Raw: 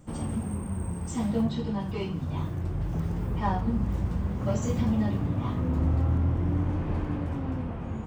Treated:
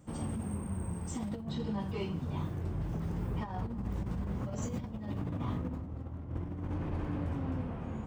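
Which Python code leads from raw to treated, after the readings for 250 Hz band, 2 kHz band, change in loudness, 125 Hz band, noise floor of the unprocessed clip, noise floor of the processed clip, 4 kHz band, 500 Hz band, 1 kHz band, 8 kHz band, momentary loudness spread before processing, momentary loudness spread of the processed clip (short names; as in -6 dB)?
-8.0 dB, -7.0 dB, -8.0 dB, -8.0 dB, -35 dBFS, -43 dBFS, -5.5 dB, -7.0 dB, -8.5 dB, -5.0 dB, 7 LU, 3 LU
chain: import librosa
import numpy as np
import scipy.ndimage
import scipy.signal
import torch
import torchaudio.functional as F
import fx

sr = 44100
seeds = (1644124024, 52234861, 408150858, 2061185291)

y = fx.highpass(x, sr, hz=42.0, slope=6)
y = fx.over_compress(y, sr, threshold_db=-29.0, ratio=-0.5)
y = fx.echo_wet_lowpass(y, sr, ms=327, feedback_pct=85, hz=960.0, wet_db=-17.0)
y = y * 10.0 ** (-6.0 / 20.0)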